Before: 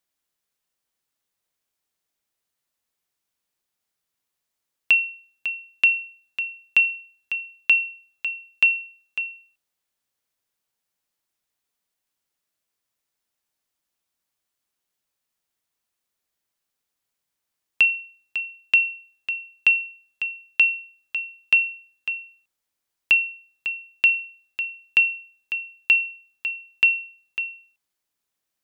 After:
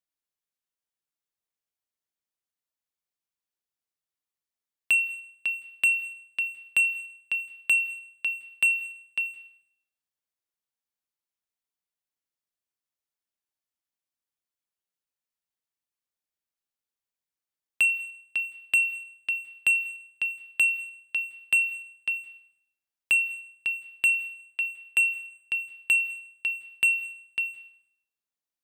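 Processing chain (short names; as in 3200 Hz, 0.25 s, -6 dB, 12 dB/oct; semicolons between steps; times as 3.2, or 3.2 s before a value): 24.2–25.11 Chebyshev band-pass 310–3400 Hz, order 2; sample leveller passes 2; on a send: reverb RT60 0.75 s, pre-delay 0.157 s, DRR 19 dB; on the sum: gain -8 dB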